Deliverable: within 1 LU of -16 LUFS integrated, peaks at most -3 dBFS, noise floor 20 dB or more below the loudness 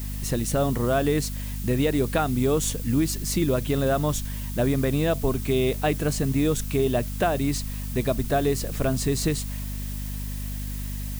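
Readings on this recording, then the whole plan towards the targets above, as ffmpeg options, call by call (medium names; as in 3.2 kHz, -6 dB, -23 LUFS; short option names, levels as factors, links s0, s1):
hum 50 Hz; highest harmonic 250 Hz; hum level -29 dBFS; noise floor -31 dBFS; noise floor target -46 dBFS; loudness -25.5 LUFS; peak level -11.0 dBFS; loudness target -16.0 LUFS
-> -af "bandreject=f=50:t=h:w=4,bandreject=f=100:t=h:w=4,bandreject=f=150:t=h:w=4,bandreject=f=200:t=h:w=4,bandreject=f=250:t=h:w=4"
-af "afftdn=nr=15:nf=-31"
-af "volume=2.99,alimiter=limit=0.708:level=0:latency=1"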